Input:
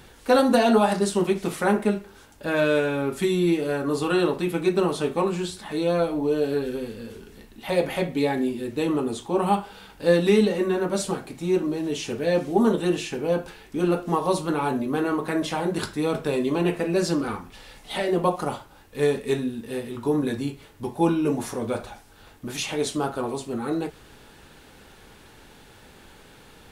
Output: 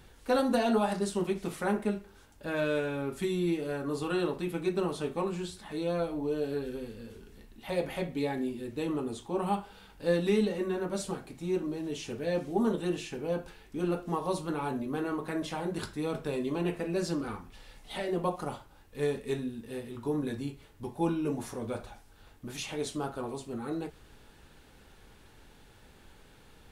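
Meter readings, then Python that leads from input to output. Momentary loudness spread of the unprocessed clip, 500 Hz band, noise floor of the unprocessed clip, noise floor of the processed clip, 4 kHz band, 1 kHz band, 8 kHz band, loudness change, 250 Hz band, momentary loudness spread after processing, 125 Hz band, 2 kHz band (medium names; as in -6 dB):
11 LU, -8.5 dB, -51 dBFS, -57 dBFS, -9.0 dB, -9.0 dB, -9.0 dB, -8.5 dB, -8.0 dB, 12 LU, -7.0 dB, -9.0 dB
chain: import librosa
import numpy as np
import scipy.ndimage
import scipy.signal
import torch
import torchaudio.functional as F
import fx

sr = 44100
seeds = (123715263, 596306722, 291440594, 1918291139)

y = fx.low_shelf(x, sr, hz=90.0, db=8.5)
y = y * librosa.db_to_amplitude(-9.0)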